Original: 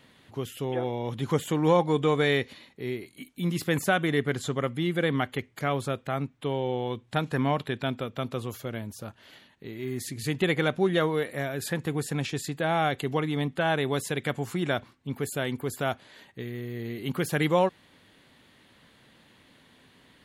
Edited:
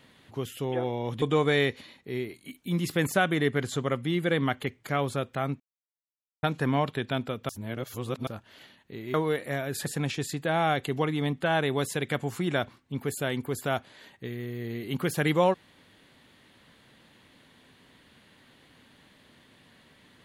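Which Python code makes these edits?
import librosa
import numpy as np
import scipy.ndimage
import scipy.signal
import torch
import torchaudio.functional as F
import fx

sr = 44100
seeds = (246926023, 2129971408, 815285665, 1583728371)

y = fx.edit(x, sr, fx.cut(start_s=1.22, length_s=0.72),
    fx.silence(start_s=6.32, length_s=0.83),
    fx.reverse_span(start_s=8.21, length_s=0.78),
    fx.cut(start_s=9.86, length_s=1.15),
    fx.cut(start_s=11.73, length_s=0.28), tone=tone)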